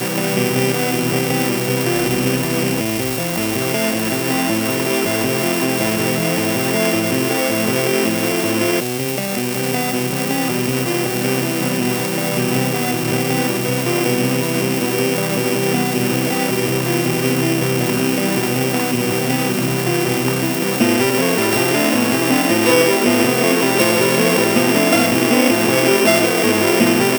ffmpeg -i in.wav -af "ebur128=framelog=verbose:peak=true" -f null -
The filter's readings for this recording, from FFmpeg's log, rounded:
Integrated loudness:
  I:         -16.4 LUFS
  Threshold: -26.4 LUFS
Loudness range:
  LRA:         4.4 LU
  Threshold: -36.6 LUFS
  LRA low:   -18.1 LUFS
  LRA high:  -13.7 LUFS
True peak:
  Peak:       -0.6 dBFS